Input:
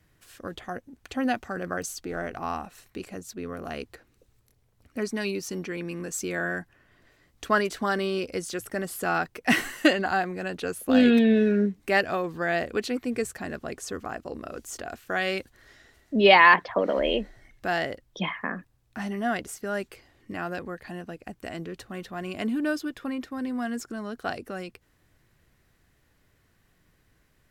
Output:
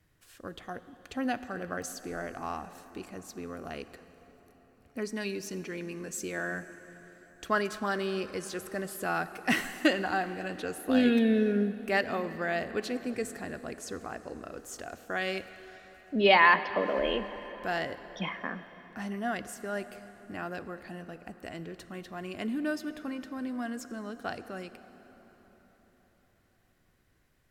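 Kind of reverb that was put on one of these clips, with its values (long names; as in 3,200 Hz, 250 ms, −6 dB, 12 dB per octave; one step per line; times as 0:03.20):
dense smooth reverb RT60 4.8 s, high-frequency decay 0.65×, DRR 12 dB
level −5 dB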